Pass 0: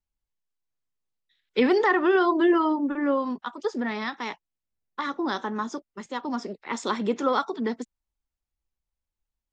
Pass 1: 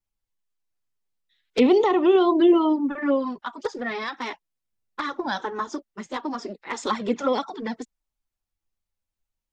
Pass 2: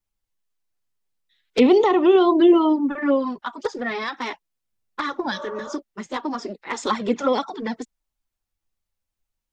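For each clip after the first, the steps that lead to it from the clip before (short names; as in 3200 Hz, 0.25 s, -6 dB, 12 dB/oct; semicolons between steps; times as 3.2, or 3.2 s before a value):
envelope flanger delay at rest 9.7 ms, full sweep at -18.5 dBFS; gain +4.5 dB
spectral repair 5.34–5.71, 490–1600 Hz after; gain +2.5 dB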